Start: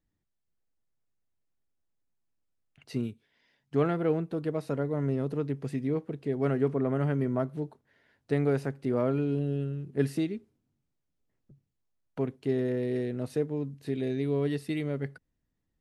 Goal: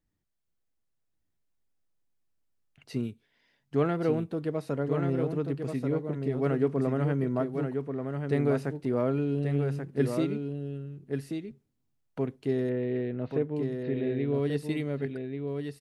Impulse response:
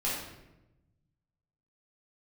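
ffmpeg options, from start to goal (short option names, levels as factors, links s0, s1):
-filter_complex "[0:a]asettb=1/sr,asplit=3[s0][s1][s2];[s0]atrim=end=12.694[s3];[s1]atrim=start=12.69:end=14.34,asetpts=PTS-STARTPTS,afade=t=in:d=0.004:c=qsin,afade=t=out:st=1.646:d=0.004:c=qsin,lowpass=f=3300:w=0.5412,lowpass=f=3300:w=1.3066[s4];[s2]atrim=start=14.336[s5];[s3][s4]acrossfade=d=0.004:c1=hsin:c2=qsin[s6];[s6][s5]acrossfade=d=0.004:c1=qsin:c2=hsin,aecho=1:1:1135:0.531"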